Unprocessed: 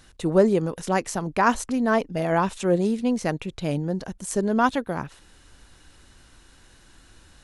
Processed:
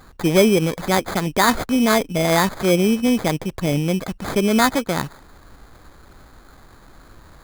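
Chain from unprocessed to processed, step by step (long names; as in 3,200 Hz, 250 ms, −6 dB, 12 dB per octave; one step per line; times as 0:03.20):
in parallel at +1 dB: brickwall limiter −16.5 dBFS, peak gain reduction 11 dB
on the sum: sample-rate reduction 2,800 Hz, jitter 0%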